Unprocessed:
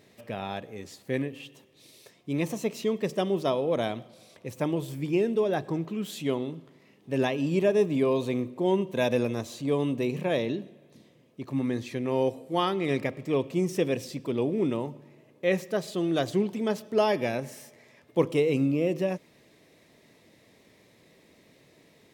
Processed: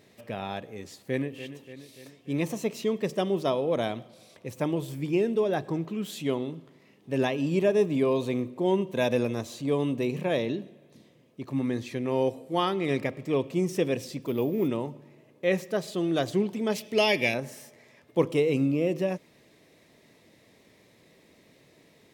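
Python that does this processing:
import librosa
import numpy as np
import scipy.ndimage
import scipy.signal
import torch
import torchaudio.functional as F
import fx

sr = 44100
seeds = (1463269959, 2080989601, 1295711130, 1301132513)

y = fx.echo_throw(x, sr, start_s=1.02, length_s=0.41, ms=290, feedback_pct=60, wet_db=-12.0)
y = fx.resample_bad(y, sr, factor=3, down='none', up='hold', at=(14.22, 14.68))
y = fx.high_shelf_res(y, sr, hz=1800.0, db=7.0, q=3.0, at=(16.72, 17.34))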